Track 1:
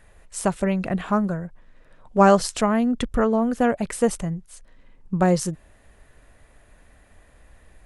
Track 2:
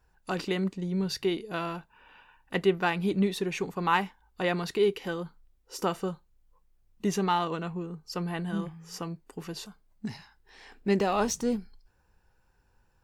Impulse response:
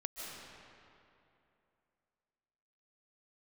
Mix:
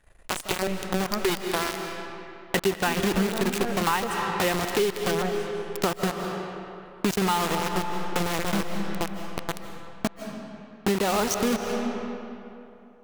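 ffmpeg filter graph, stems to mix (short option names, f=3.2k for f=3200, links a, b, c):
-filter_complex "[0:a]aeval=exprs='if(lt(val(0),0),0.251*val(0),val(0))':c=same,acontrast=72,volume=-9dB,asplit=3[a][b][c];[a]atrim=end=1.3,asetpts=PTS-STARTPTS,afade=t=out:st=1.296:d=0.004:c=hsin[d];[b]atrim=start=1.3:end=2.87,asetpts=PTS-STARTPTS,volume=0[e];[c]atrim=start=2.87,asetpts=PTS-STARTPTS,afade=t=in:d=0.004:c=hsin[f];[d][e][f]concat=n=3:v=0:a=1,asplit=2[g][h];[h]volume=-16dB[i];[1:a]lowpass=f=9.9k:w=0.5412,lowpass=f=9.9k:w=1.3066,dynaudnorm=f=520:g=5:m=6dB,acrusher=bits=3:mix=0:aa=0.000001,volume=0.5dB,asplit=3[j][k][l];[k]volume=-3.5dB[m];[l]apad=whole_len=346490[n];[g][n]sidechaingate=range=-33dB:threshold=-34dB:ratio=16:detection=peak[o];[2:a]atrim=start_sample=2205[p];[i][m]amix=inputs=2:normalize=0[q];[q][p]afir=irnorm=-1:irlink=0[r];[o][j][r]amix=inputs=3:normalize=0,acompressor=threshold=-21dB:ratio=6"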